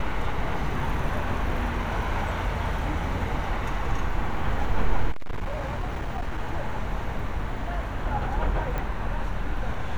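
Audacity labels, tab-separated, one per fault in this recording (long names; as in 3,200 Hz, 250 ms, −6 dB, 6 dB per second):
5.110000	6.380000	clipping −24.5 dBFS
8.780000	8.780000	click −17 dBFS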